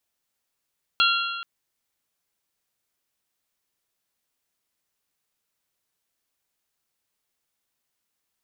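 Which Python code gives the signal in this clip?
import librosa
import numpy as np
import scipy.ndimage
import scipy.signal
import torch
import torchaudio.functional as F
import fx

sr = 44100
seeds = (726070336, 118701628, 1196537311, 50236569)

y = fx.strike_metal(sr, length_s=0.43, level_db=-19, body='bell', hz=1380.0, decay_s=1.65, tilt_db=1.0, modes=4)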